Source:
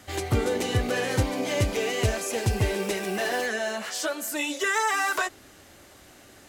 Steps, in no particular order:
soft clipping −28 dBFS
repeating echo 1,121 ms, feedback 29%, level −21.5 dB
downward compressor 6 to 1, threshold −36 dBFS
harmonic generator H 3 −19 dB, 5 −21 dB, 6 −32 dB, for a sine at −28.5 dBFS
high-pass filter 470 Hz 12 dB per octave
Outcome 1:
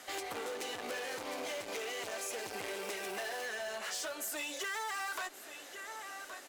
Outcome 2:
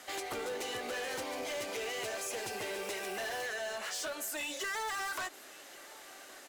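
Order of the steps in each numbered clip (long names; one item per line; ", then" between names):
repeating echo, then soft clipping, then high-pass filter, then harmonic generator, then downward compressor
high-pass filter, then harmonic generator, then soft clipping, then downward compressor, then repeating echo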